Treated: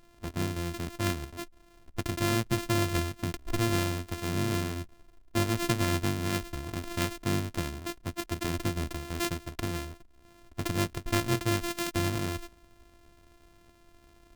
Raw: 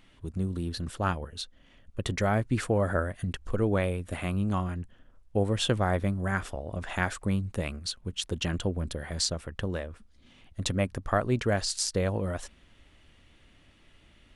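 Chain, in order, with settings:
samples sorted by size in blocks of 128 samples
dynamic equaliser 740 Hz, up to −5 dB, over −40 dBFS, Q 0.71

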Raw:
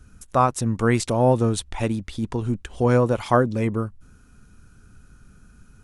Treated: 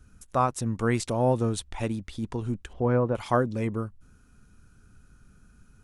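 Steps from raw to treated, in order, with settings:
0:02.73–0:03.15: low-pass filter 1,800 Hz 12 dB per octave
level −5.5 dB

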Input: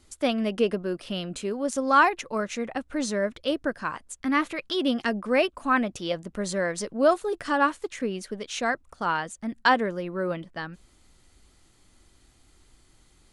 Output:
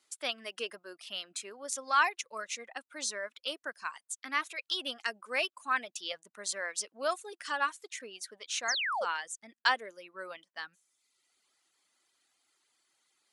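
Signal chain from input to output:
meter weighting curve A
reverb reduction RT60 0.9 s
spectral tilt +3.5 dB per octave
sound drawn into the spectrogram fall, 0:08.68–0:09.05, 460–7,000 Hz −24 dBFS
one half of a high-frequency compander decoder only
level −8.5 dB

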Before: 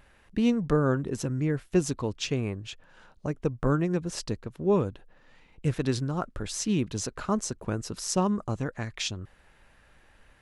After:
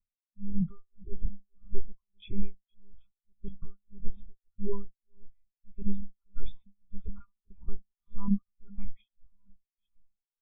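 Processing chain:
one-pitch LPC vocoder at 8 kHz 200 Hz
high-shelf EQ 2,800 Hz +9 dB
in parallel at +2 dB: downward compressor, threshold −34 dBFS, peak gain reduction 17 dB
on the sum: brickwall limiter −18 dBFS, peak gain reduction 11.5 dB
on a send: delay that swaps between a low-pass and a high-pass 392 ms, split 910 Hz, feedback 62%, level −9 dB
on the sum: amplitude tremolo 1.7 Hz, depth 96%
comb filter 0.9 ms, depth 98%
every bin expanded away from the loudest bin 2.5 to 1
level +2.5 dB

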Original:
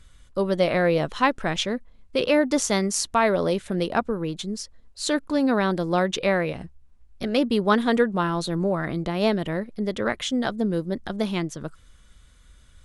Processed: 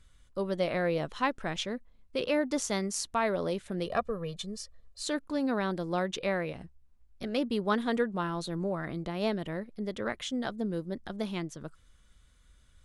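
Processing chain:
0:03.86–0:05.03: comb filter 1.7 ms, depth 85%
level −8.5 dB

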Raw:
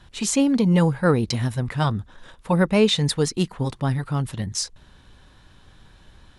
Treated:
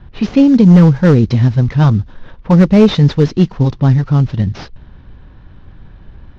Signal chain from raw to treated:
variable-slope delta modulation 32 kbit/s
low-pass that shuts in the quiet parts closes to 2,100 Hz, open at −17.5 dBFS
low-shelf EQ 410 Hz +11.5 dB
gain into a clipping stage and back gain 4.5 dB
level +3.5 dB

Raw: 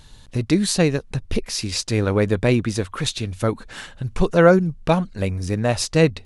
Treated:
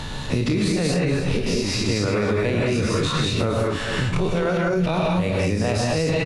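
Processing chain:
every bin's largest magnitude spread in time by 60 ms
high-shelf EQ 7,200 Hz −11.5 dB
on a send: single-tap delay 262 ms −17.5 dB
on the sum: reverb whose tail is shaped and stops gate 240 ms rising, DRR −3 dB
brickwall limiter −7.5 dBFS, peak gain reduction 11 dB
downward compressor 3 to 1, threshold −20 dBFS, peak gain reduction 7 dB
notch filter 1,600 Hz, Q 19
multiband upward and downward compressor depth 70%

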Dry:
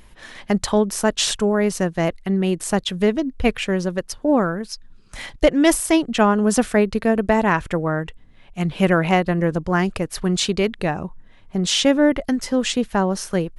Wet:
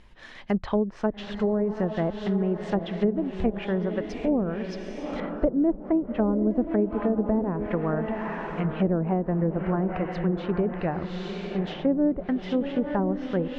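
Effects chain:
feedback delay with all-pass diffusion 864 ms, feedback 44%, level −8 dB
treble cut that deepens with the level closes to 490 Hz, closed at −13 dBFS
low-pass filter 4,800 Hz 12 dB per octave, from 0:05.20 1,500 Hz, from 0:06.51 3,300 Hz
de-essing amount 85%
level −5.5 dB

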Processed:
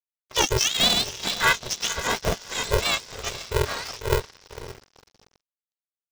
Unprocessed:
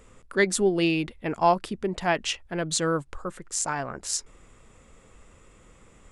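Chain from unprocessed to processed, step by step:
frequency axis turned over on the octave scale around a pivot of 1,100 Hz
in parallel at 0 dB: downward compressor 16 to 1, threshold −32 dBFS, peak gain reduction 20 dB
on the sum: parametric band 150 Hz −14 dB 0.22 octaves
noise gate with hold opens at −42 dBFS
pitch vibrato 6 Hz 54 cents
feedback delay with all-pass diffusion 493 ms, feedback 42%, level −10.5 dB
dead-zone distortion −37.5 dBFS
low-pass with resonance 5,400 Hz, resonance Q 5.8
ring modulator with a square carrier 250 Hz

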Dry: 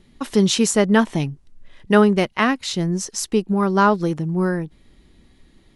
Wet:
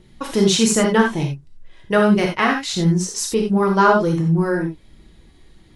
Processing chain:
phase shifter 1.4 Hz, delay 3.2 ms, feedback 35%
speech leveller 2 s
reverb whose tail is shaped and stops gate 110 ms flat, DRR 0.5 dB
level −2 dB

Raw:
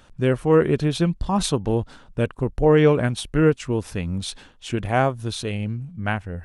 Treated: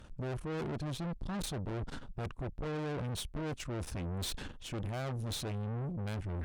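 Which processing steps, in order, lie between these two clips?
low-shelf EQ 340 Hz +11 dB
reversed playback
downward compressor 16 to 1, threshold −22 dBFS, peak gain reduction 17.5 dB
reversed playback
tube saturation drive 38 dB, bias 0.75
level +2.5 dB

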